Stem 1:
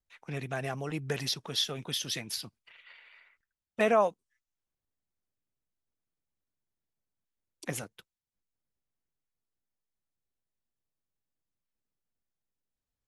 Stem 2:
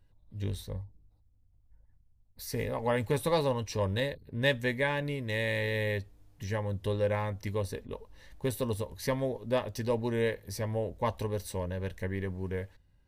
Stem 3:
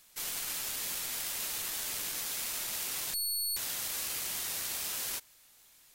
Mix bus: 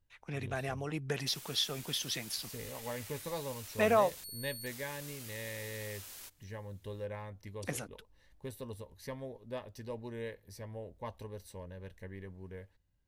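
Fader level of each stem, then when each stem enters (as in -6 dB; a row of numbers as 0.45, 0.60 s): -2.5, -12.0, -13.0 dB; 0.00, 0.00, 1.10 s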